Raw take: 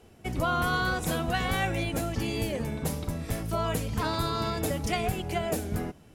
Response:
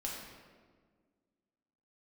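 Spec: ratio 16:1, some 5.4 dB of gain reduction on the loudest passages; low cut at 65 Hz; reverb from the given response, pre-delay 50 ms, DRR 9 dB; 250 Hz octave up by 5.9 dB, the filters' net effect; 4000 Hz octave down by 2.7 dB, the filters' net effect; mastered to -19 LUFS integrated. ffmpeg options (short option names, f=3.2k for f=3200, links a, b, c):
-filter_complex "[0:a]highpass=65,equalizer=f=250:t=o:g=8,equalizer=f=4k:t=o:g=-3.5,acompressor=threshold=-27dB:ratio=16,asplit=2[a][b];[1:a]atrim=start_sample=2205,adelay=50[c];[b][c]afir=irnorm=-1:irlink=0,volume=-10dB[d];[a][d]amix=inputs=2:normalize=0,volume=12.5dB"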